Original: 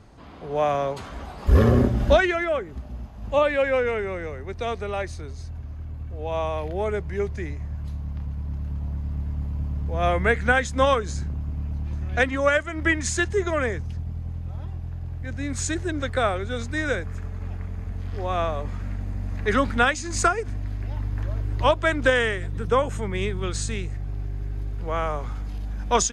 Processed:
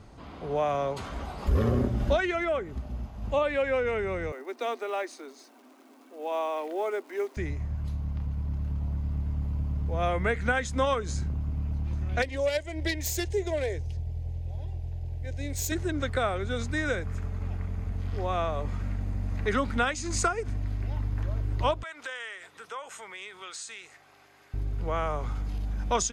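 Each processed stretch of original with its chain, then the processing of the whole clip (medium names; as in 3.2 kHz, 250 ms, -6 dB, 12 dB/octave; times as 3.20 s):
4.32–7.37 s: short-mantissa float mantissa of 4-bit + rippled Chebyshev high-pass 240 Hz, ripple 3 dB
12.22–15.72 s: self-modulated delay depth 0.12 ms + static phaser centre 520 Hz, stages 4
21.83–24.54 s: high-pass 940 Hz + compression 2.5:1, threshold -40 dBFS
whole clip: band-stop 1.7 kHz, Q 17; compression 2:1, threshold -27 dBFS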